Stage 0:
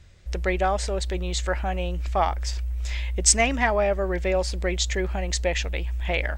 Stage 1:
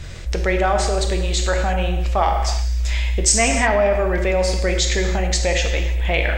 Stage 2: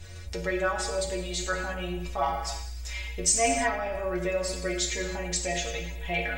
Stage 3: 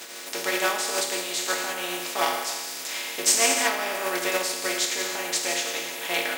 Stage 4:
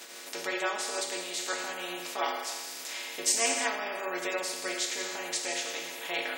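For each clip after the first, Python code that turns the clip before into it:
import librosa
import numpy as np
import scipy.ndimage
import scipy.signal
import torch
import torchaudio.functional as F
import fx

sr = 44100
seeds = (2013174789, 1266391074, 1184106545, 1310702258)

y1 = fx.rev_gated(x, sr, seeds[0], gate_ms=360, shape='falling', drr_db=3.5)
y1 = fx.env_flatten(y1, sr, amount_pct=50)
y2 = fx.high_shelf(y1, sr, hz=8000.0, db=8.0)
y2 = fx.stiff_resonator(y2, sr, f0_hz=84.0, decay_s=0.39, stiffness=0.008)
y3 = fx.spec_flatten(y2, sr, power=0.45)
y3 = scipy.signal.sosfilt(scipy.signal.butter(4, 260.0, 'highpass', fs=sr, output='sos'), y3)
y3 = y3 * librosa.db_to_amplitude(3.5)
y4 = fx.spec_gate(y3, sr, threshold_db=-20, keep='strong')
y4 = y4 * librosa.db_to_amplitude(-6.0)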